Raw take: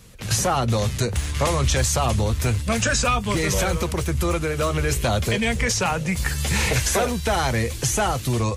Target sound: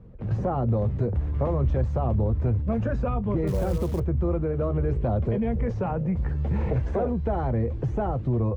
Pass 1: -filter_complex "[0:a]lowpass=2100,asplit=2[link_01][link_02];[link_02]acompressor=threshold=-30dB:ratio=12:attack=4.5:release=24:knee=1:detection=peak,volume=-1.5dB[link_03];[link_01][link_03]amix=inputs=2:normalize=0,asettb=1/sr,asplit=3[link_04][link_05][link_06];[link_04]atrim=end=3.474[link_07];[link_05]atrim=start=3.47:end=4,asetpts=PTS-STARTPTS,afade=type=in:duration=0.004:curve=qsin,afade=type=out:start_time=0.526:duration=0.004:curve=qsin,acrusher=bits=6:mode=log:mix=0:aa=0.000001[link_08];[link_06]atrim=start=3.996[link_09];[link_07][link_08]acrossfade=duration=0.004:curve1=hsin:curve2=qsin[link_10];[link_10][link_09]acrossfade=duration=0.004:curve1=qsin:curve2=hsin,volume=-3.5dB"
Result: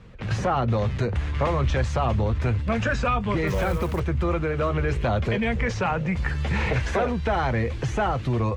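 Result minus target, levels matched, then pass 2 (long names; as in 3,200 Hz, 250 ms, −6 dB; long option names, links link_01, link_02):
2,000 Hz band +15.0 dB
-filter_complex "[0:a]lowpass=590,asplit=2[link_01][link_02];[link_02]acompressor=threshold=-30dB:ratio=12:attack=4.5:release=24:knee=1:detection=peak,volume=-1.5dB[link_03];[link_01][link_03]amix=inputs=2:normalize=0,asettb=1/sr,asplit=3[link_04][link_05][link_06];[link_04]atrim=end=3.474[link_07];[link_05]atrim=start=3.47:end=4,asetpts=PTS-STARTPTS,afade=type=in:duration=0.004:curve=qsin,afade=type=out:start_time=0.526:duration=0.004:curve=qsin,acrusher=bits=6:mode=log:mix=0:aa=0.000001[link_08];[link_06]atrim=start=3.996[link_09];[link_07][link_08]acrossfade=duration=0.004:curve1=hsin:curve2=qsin[link_10];[link_10][link_09]acrossfade=duration=0.004:curve1=qsin:curve2=hsin,volume=-3.5dB"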